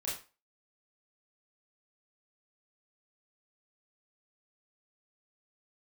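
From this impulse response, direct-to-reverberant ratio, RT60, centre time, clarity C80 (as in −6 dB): −7.0 dB, 0.35 s, 40 ms, 10.5 dB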